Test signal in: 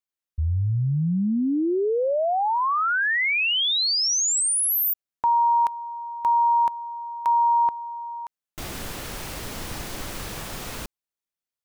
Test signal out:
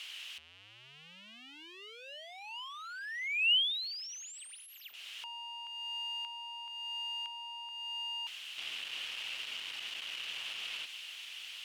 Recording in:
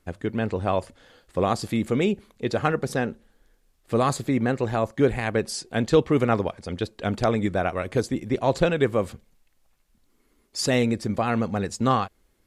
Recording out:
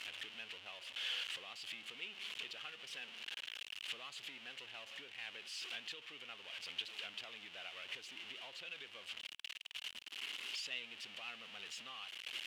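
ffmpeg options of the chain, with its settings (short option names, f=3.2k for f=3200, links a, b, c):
-af "aeval=exprs='val(0)+0.5*0.0944*sgn(val(0))':c=same,acompressor=threshold=-22dB:ratio=6:attack=5.3:release=409:knee=1:detection=rms,bandpass=f=2.9k:t=q:w=6:csg=0,volume=-2dB"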